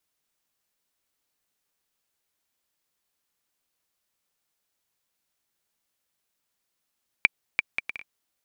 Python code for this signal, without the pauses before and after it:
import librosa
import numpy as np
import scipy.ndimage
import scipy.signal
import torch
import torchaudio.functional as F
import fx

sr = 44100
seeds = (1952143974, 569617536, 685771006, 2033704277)

y = fx.bouncing_ball(sr, first_gap_s=0.34, ratio=0.57, hz=2350.0, decay_ms=23.0, level_db=-3.0)